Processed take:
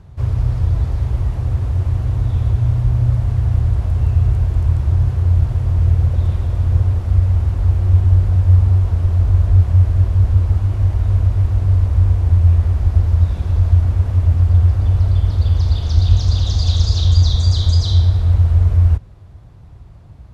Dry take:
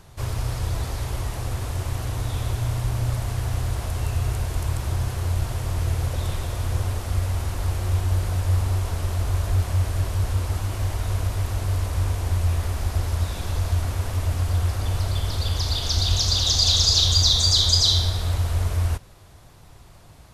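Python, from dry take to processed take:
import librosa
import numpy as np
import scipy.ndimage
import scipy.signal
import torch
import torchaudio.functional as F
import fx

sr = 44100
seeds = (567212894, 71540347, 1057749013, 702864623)

y = scipy.signal.sosfilt(scipy.signal.butter(2, 56.0, 'highpass', fs=sr, output='sos'), x)
y = fx.riaa(y, sr, side='playback')
y = F.gain(torch.from_numpy(y), -2.5).numpy()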